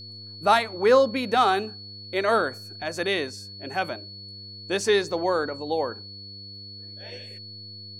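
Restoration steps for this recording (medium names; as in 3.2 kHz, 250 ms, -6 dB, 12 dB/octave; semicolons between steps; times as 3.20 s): de-hum 100.2 Hz, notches 5; band-stop 4.4 kHz, Q 30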